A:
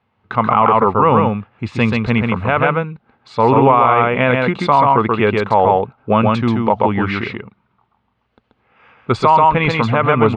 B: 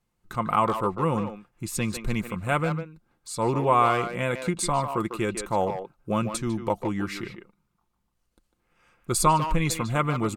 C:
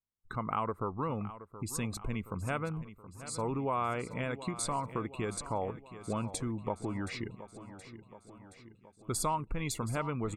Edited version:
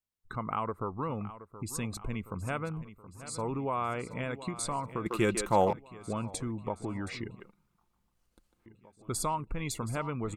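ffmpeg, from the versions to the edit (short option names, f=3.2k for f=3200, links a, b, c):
-filter_complex "[1:a]asplit=2[a][b];[2:a]asplit=3[c][d][e];[c]atrim=end=5.062[f];[a]atrim=start=5.058:end=5.732[g];[d]atrim=start=5.728:end=7.402[h];[b]atrim=start=7.398:end=8.662[i];[e]atrim=start=8.658[j];[f][g]acrossfade=d=0.004:c1=hsin:c2=hsin[k];[k][h]acrossfade=d=0.004:c1=hsin:c2=hsin[l];[l][i]acrossfade=d=0.004:c1=hsin:c2=hsin[m];[m][j]acrossfade=d=0.004:c1=hsin:c2=hsin"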